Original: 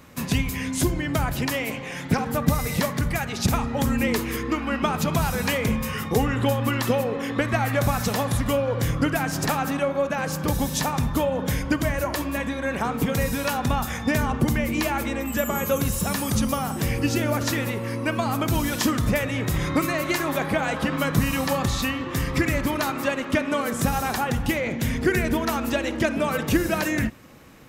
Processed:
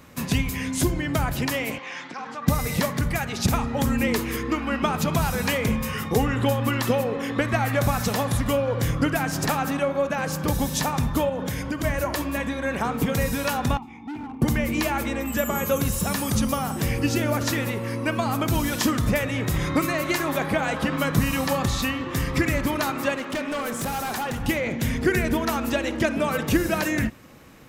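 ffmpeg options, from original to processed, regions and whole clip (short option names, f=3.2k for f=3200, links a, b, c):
-filter_complex "[0:a]asettb=1/sr,asplit=3[a][b][c];[a]atrim=end=1.784[d];[b]atrim=start=1.78:end=2.48,asetpts=PTS-STARTPTS,afade=t=in:d=0.004:c=qsin,afade=t=out:st=0.696:d=0.004:c=qsin,acompressor=threshold=-25dB:ratio=10:attack=3.2:release=140:knee=1:detection=peak,highpass=400,equalizer=f=440:t=q:w=4:g=-8,equalizer=f=630:t=q:w=4:g=-6,equalizer=f=1.1k:t=q:w=4:g=4,lowpass=f=6.1k:w=0.5412,lowpass=f=6.1k:w=1.3066[e];[c]atrim=start=2.476[f];[d][e]acrossfade=d=0.004:c1=hsin:c2=qsin[g];[g][f]acrossfade=d=0.004:c1=qsin:c2=hsin,asettb=1/sr,asplit=3[h][i][j];[h]atrim=end=11.294[k];[i]atrim=start=11.29:end=11.84,asetpts=PTS-STARTPTS,afade=t=in:d=0.004:c=qsin,afade=t=out:st=0.546:d=0.004:c=qsin,highpass=69,acompressor=threshold=-24dB:ratio=4:attack=3.2:release=140:knee=1:detection=peak[l];[j]atrim=start=11.836[m];[k][l]acrossfade=d=0.004:c1=hsin:c2=qsin[n];[n][m]acrossfade=d=0.004:c1=qsin:c2=hsin,asettb=1/sr,asplit=3[o][p][q];[o]atrim=end=13.774[r];[p]atrim=start=13.77:end=14.42,asetpts=PTS-STARTPTS,afade=t=in:d=0.004:c=qsin,afade=t=out:st=0.646:d=0.004:c=qsin,asplit=3[s][t][u];[s]bandpass=f=300:t=q:w=8,volume=0dB[v];[t]bandpass=f=870:t=q:w=8,volume=-6dB[w];[u]bandpass=f=2.24k:t=q:w=8,volume=-9dB[x];[v][w][x]amix=inputs=3:normalize=0,lowshelf=f=250:g=7.5,volume=31dB,asoftclip=hard,volume=-31dB[y];[q]atrim=start=14.416[z];[r][y]acrossfade=d=0.004:c1=hsin:c2=qsin[aa];[aa][z]acrossfade=d=0.004:c1=qsin:c2=hsin,asettb=1/sr,asplit=3[ab][ac][ad];[ab]atrim=end=23.174[ae];[ac]atrim=start=23.17:end=24.41,asetpts=PTS-STARTPTS,afade=t=in:d=0.004:c=qsin,afade=t=out:st=1.236:d=0.004:c=qsin,lowshelf=f=120:g=-10,asoftclip=type=hard:threshold=-24.5dB[af];[ad]atrim=start=24.406[ag];[ae][af]acrossfade=d=0.004:c1=hsin:c2=qsin[ah];[ah][ag]acrossfade=d=0.004:c1=qsin:c2=hsin"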